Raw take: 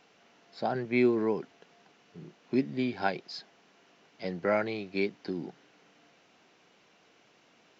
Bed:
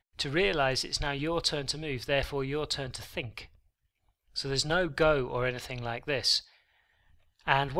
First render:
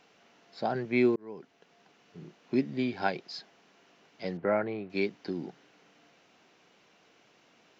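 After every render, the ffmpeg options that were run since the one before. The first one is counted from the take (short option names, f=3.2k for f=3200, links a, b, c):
-filter_complex "[0:a]asettb=1/sr,asplit=3[a][b][c];[a]atrim=end=4.374[d];[b]atrim=start=4.37:end=4.9,asetpts=PTS-STARTPTS,afade=t=in:d=0.004:c=qsin,afade=t=out:st=0.526:d=0.004:c=qsin,lowpass=1.7k[e];[c]atrim=start=4.896[f];[d][e]acrossfade=d=0.004:c1=hsin:c2=qsin[g];[g][f]acrossfade=d=0.004:c1=qsin:c2=hsin,asplit=2[h][i];[h]atrim=end=1.16,asetpts=PTS-STARTPTS,afade=t=out:st=1.156:d=0.004:c=hsin[j];[i]atrim=start=1.16,asetpts=PTS-STARTPTS,afade=t=in:d=1.1:c=qsin[k];[j][k]concat=n=2:v=0:a=1"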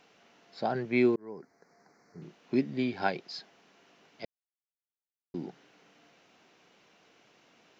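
-filter_complex "[0:a]asettb=1/sr,asplit=3[a][b][c];[a]atrim=end=1.164[d];[b]atrim=start=1.16:end=2.22,asetpts=PTS-STARTPTS,afade=t=in:d=0.004:c=qsin,afade=t=out:st=1.056:d=0.004:c=qsin,asuperstop=centerf=3100:order=8:qfactor=1.4[e];[c]atrim=start=2.216[f];[d][e]acrossfade=d=0.004:c1=hsin:c2=qsin[g];[g][f]acrossfade=d=0.004:c1=qsin:c2=hsin,asplit=3[h][i][j];[h]atrim=end=4.25,asetpts=PTS-STARTPTS,afade=t=out:st=4.246:d=0.004:c=hsin[k];[i]atrim=start=4.25:end=5.34,asetpts=PTS-STARTPTS,volume=0[l];[j]atrim=start=5.34,asetpts=PTS-STARTPTS,afade=t=in:d=0.004:c=hsin[m];[k][l][m]concat=n=3:v=0:a=1"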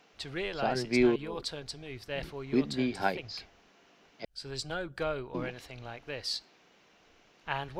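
-filter_complex "[1:a]volume=-8.5dB[a];[0:a][a]amix=inputs=2:normalize=0"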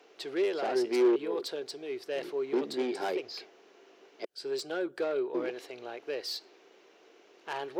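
-af "asoftclip=type=tanh:threshold=-30.5dB,highpass=f=380:t=q:w=3.9"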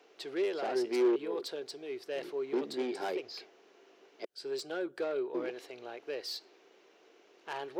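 -af "volume=-3dB"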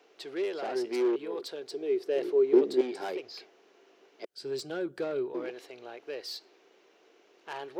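-filter_complex "[0:a]asettb=1/sr,asplit=3[a][b][c];[a]atrim=end=1.714[d];[b]atrim=start=1.71:end=2.81,asetpts=PTS-STARTPTS,afade=t=in:d=0.004:c=qsin,afade=t=out:st=1.096:d=0.004:c=qsin,equalizer=f=390:w=1.5:g=12.5[e];[c]atrim=start=2.806[f];[d][e]acrossfade=d=0.004:c1=hsin:c2=qsin[g];[g][f]acrossfade=d=0.004:c1=qsin:c2=hsin,asettb=1/sr,asplit=3[h][i][j];[h]atrim=end=4.364[k];[i]atrim=start=4.36:end=5.33,asetpts=PTS-STARTPTS,afade=t=in:d=0.004:c=qsin,afade=t=out:st=0.966:d=0.004:c=qsin,bass=f=250:g=14,treble=f=4k:g=2[l];[j]atrim=start=5.326[m];[k][l]acrossfade=d=0.004:c1=hsin:c2=qsin[n];[n][m]acrossfade=d=0.004:c1=qsin:c2=hsin"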